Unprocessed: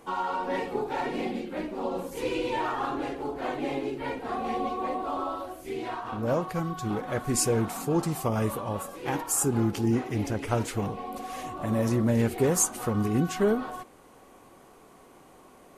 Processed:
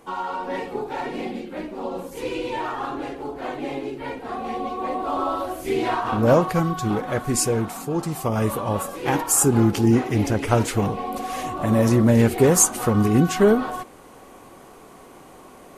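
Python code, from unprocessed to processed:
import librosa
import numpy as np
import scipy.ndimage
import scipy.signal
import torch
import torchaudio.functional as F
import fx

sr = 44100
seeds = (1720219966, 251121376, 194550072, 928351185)

y = fx.gain(x, sr, db=fx.line((4.64, 1.5), (5.62, 11.0), (6.28, 11.0), (7.93, 0.5), (8.73, 8.0)))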